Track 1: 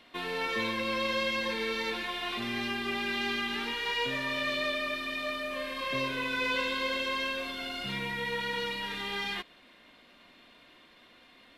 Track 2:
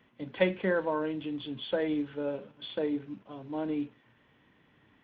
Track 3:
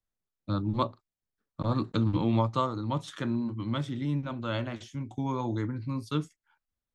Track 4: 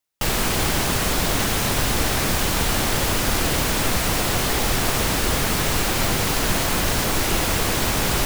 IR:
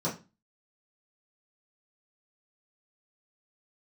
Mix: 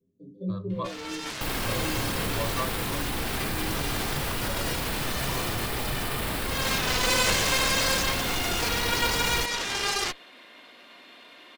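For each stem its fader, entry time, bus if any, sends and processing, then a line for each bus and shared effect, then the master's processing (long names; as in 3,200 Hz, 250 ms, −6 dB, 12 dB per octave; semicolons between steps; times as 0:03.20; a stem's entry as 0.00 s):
+3.0 dB, 0.70 s, no send, high-pass filter 290 Hz 12 dB per octave; harmonic generator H 6 −7 dB, 7 −8 dB, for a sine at −19.5 dBFS; automatic ducking −11 dB, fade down 0.90 s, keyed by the third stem
+3.0 dB, 0.00 s, send −7.5 dB, inverse Chebyshev band-stop filter 860–2,900 Hz, stop band 50 dB; stiff-string resonator 94 Hz, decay 0.38 s, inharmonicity 0.008
−12.0 dB, 0.00 s, send −14.5 dB, comb filter 1.8 ms, depth 98%
−3.0 dB, 1.20 s, no send, parametric band 6,200 Hz −14 dB 0.44 octaves; notch filter 590 Hz, Q 12; brickwall limiter −18 dBFS, peak gain reduction 9 dB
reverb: on, RT60 0.30 s, pre-delay 3 ms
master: no processing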